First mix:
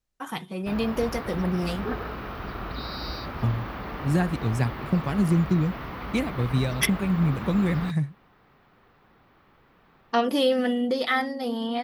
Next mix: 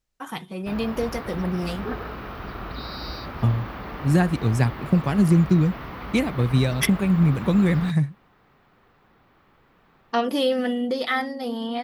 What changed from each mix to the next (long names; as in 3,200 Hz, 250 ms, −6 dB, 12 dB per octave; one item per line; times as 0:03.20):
second voice +4.5 dB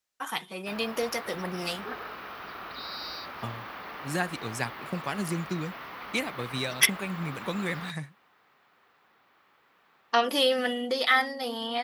first voice +4.5 dB
master: add high-pass filter 1,100 Hz 6 dB per octave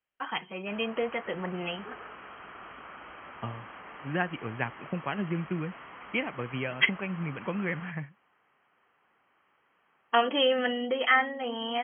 background −5.0 dB
master: add linear-phase brick-wall low-pass 3,300 Hz